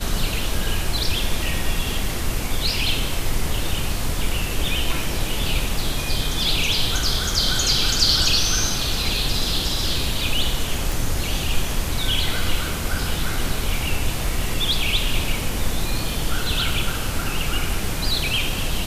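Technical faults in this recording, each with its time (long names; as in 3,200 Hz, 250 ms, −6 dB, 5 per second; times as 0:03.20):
0:10.92: click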